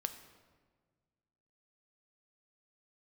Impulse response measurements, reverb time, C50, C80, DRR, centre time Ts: 1.5 s, 10.5 dB, 12.0 dB, 8.0 dB, 14 ms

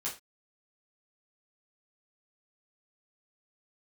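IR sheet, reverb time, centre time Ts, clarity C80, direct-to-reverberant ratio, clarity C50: no single decay rate, 22 ms, 16.0 dB, -6.5 dB, 9.0 dB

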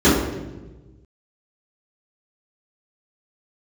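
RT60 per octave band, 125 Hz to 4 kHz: 1.9 s, 1.5 s, 1.4 s, 1.0 s, 0.90 s, 0.80 s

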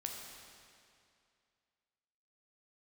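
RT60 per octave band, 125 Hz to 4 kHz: 2.4 s, 2.4 s, 2.4 s, 2.4 s, 2.3 s, 2.2 s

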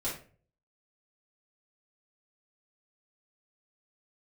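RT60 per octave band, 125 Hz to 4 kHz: 0.65 s, 0.50 s, 0.50 s, 0.35 s, 0.35 s, 0.30 s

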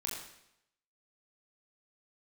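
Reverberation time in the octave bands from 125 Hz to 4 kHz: 0.75 s, 0.80 s, 0.80 s, 0.80 s, 0.80 s, 0.75 s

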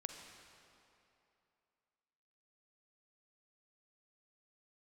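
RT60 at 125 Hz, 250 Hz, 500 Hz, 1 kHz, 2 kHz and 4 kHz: 2.6 s, 2.7 s, 2.8 s, 2.8 s, 2.5 s, 2.1 s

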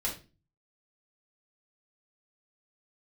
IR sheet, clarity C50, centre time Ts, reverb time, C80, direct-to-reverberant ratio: 8.5 dB, 22 ms, 0.30 s, 15.0 dB, -5.5 dB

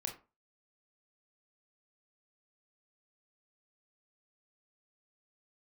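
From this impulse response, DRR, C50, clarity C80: 2.5 dB, 10.0 dB, 16.0 dB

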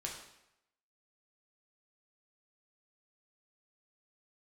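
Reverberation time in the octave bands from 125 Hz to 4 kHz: 0.80 s, 0.75 s, 0.85 s, 0.85 s, 0.80 s, 0.75 s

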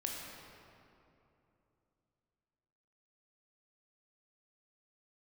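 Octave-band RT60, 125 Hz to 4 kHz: 3.6 s, 3.4 s, 3.1 s, 2.7 s, 2.1 s, 1.6 s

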